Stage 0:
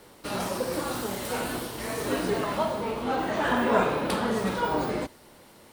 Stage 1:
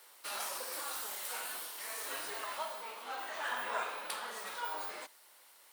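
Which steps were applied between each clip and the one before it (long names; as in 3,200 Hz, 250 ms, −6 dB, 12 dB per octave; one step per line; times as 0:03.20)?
high-pass filter 1,000 Hz 12 dB per octave
high-shelf EQ 8,900 Hz +9 dB
speech leveller 2 s
level −8 dB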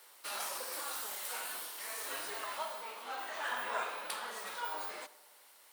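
tape delay 83 ms, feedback 73%, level −19 dB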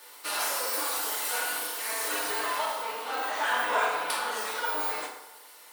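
feedback delay network reverb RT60 0.85 s, low-frequency decay 0.75×, high-frequency decay 0.7×, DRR −2.5 dB
level +6 dB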